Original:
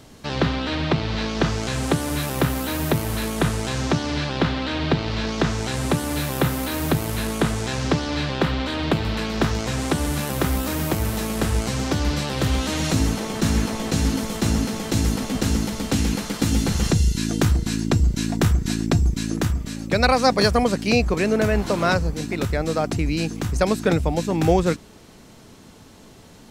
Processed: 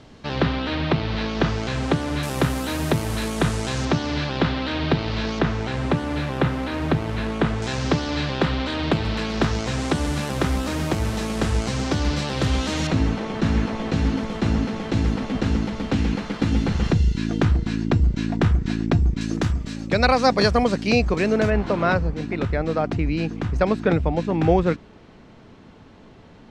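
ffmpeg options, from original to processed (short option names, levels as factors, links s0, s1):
-af "asetnsamples=n=441:p=0,asendcmd='2.23 lowpass f 9400;3.85 lowpass f 5400;5.39 lowpass f 3100;7.62 lowpass f 6700;12.87 lowpass f 3000;19.21 lowpass f 5400;21.5 lowpass f 2800',lowpass=4300"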